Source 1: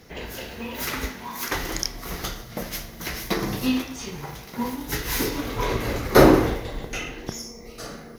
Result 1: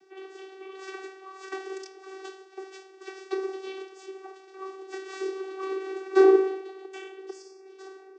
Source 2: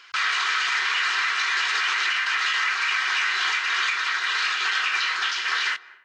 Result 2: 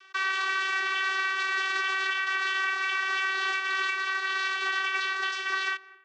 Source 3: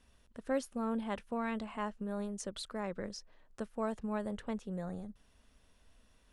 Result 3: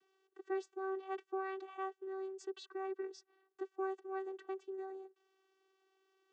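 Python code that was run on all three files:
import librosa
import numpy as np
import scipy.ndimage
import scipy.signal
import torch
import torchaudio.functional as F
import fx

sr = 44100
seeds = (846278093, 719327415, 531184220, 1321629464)

y = fx.vocoder(x, sr, bands=16, carrier='saw', carrier_hz=383.0)
y = F.gain(torch.from_numpy(y), -3.5).numpy()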